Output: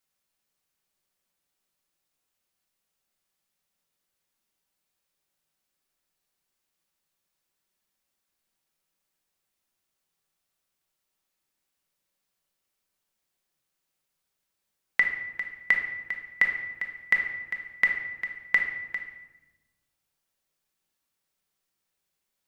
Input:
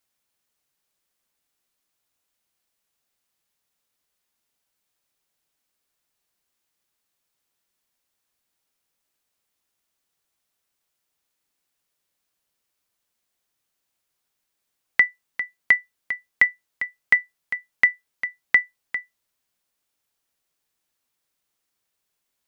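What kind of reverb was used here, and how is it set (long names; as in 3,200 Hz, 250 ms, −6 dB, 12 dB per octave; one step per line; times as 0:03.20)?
rectangular room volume 590 cubic metres, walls mixed, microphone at 1.1 metres
level −4.5 dB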